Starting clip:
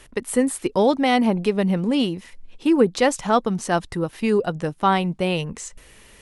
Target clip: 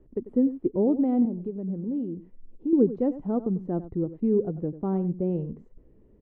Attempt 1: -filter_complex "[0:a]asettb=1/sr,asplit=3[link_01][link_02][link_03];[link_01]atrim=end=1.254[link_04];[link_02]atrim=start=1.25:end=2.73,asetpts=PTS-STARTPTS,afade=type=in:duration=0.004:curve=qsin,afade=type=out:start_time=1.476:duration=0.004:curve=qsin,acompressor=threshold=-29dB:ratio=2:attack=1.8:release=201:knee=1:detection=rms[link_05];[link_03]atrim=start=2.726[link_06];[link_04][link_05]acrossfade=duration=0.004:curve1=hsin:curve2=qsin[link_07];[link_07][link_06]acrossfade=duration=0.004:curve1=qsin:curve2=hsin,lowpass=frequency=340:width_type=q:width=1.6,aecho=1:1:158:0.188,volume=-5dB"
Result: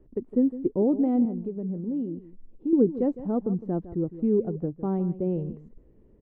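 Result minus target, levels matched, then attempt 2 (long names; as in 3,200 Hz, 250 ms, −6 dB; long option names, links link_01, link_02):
echo 64 ms late
-filter_complex "[0:a]asettb=1/sr,asplit=3[link_01][link_02][link_03];[link_01]atrim=end=1.254[link_04];[link_02]atrim=start=1.25:end=2.73,asetpts=PTS-STARTPTS,afade=type=in:duration=0.004:curve=qsin,afade=type=out:start_time=1.476:duration=0.004:curve=qsin,acompressor=threshold=-29dB:ratio=2:attack=1.8:release=201:knee=1:detection=rms[link_05];[link_03]atrim=start=2.726[link_06];[link_04][link_05]acrossfade=duration=0.004:curve1=hsin:curve2=qsin[link_07];[link_07][link_06]acrossfade=duration=0.004:curve1=qsin:curve2=hsin,lowpass=frequency=340:width_type=q:width=1.6,aecho=1:1:94:0.188,volume=-5dB"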